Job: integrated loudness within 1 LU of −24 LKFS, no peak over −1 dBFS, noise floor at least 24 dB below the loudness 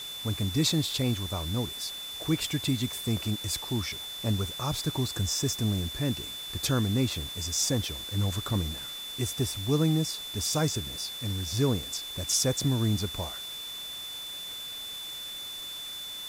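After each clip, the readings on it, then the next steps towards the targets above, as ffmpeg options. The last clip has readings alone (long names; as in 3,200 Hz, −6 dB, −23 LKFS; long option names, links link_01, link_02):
interfering tone 3,500 Hz; level of the tone −37 dBFS; background noise floor −39 dBFS; target noise floor −54 dBFS; integrated loudness −30.0 LKFS; sample peak −13.5 dBFS; target loudness −24.0 LKFS
→ -af "bandreject=frequency=3500:width=30"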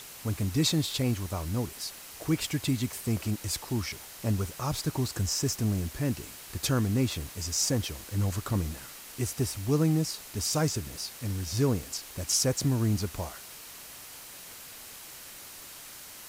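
interfering tone none found; background noise floor −46 dBFS; target noise floor −54 dBFS
→ -af "afftdn=noise_reduction=8:noise_floor=-46"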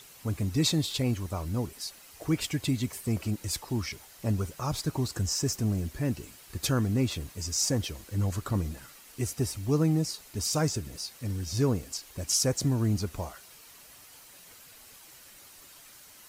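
background noise floor −52 dBFS; target noise floor −54 dBFS
→ -af "afftdn=noise_reduction=6:noise_floor=-52"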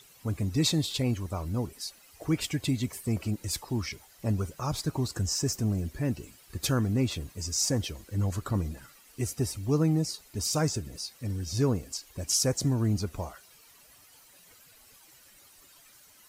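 background noise floor −57 dBFS; integrated loudness −30.0 LKFS; sample peak −14.5 dBFS; target loudness −24.0 LKFS
→ -af "volume=6dB"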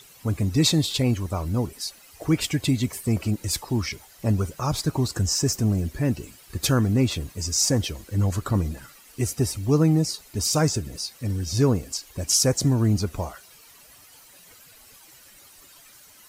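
integrated loudness −24.0 LKFS; sample peak −8.5 dBFS; background noise floor −51 dBFS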